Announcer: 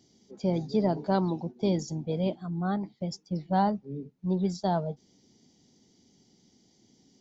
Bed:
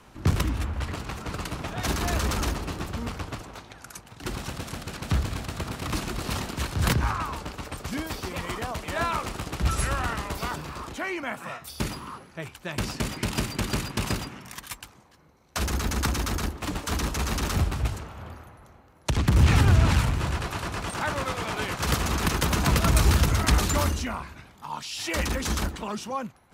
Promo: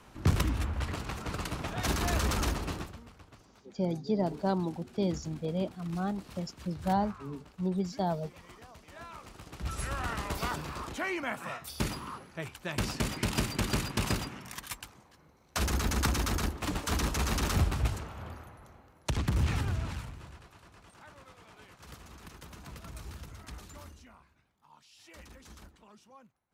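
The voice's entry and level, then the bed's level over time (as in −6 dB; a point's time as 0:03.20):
3.35 s, −3.5 dB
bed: 0:02.76 −3 dB
0:03.04 −20 dB
0:09.07 −20 dB
0:10.31 −2.5 dB
0:18.86 −2.5 dB
0:20.53 −24.5 dB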